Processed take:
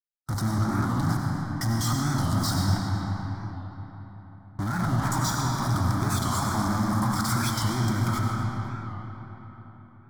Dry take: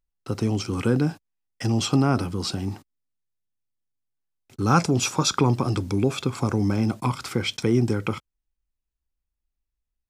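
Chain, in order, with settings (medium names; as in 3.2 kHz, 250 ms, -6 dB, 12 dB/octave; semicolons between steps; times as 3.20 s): 2.65–5.12 s: CVSD coder 16 kbps; 6.01–6.67 s: high-pass 500 Hz 6 dB/octave; gate -41 dBFS, range -36 dB; 0.56–1.00 s: low-pass 1.4 kHz 24 dB/octave; in parallel at -5 dB: fuzz box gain 43 dB, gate -48 dBFS; on the sum: static phaser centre 1.1 kHz, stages 4; peak limiter -16.5 dBFS, peak gain reduction 10 dB; on a send: echo whose repeats swap between lows and highs 125 ms, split 1.1 kHz, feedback 52%, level -11 dB; on the sum: algorithmic reverb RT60 4.4 s, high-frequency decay 0.6×, pre-delay 50 ms, DRR -1 dB; warped record 45 rpm, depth 100 cents; trim -5.5 dB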